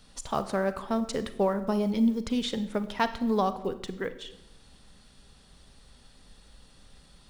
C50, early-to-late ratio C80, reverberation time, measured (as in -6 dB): 13.5 dB, 15.5 dB, 0.90 s